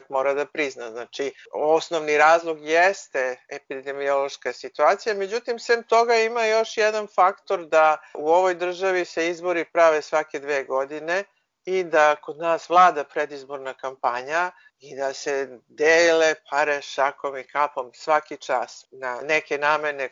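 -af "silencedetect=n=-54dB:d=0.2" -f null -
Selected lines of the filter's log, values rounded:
silence_start: 11.31
silence_end: 11.65 | silence_duration: 0.35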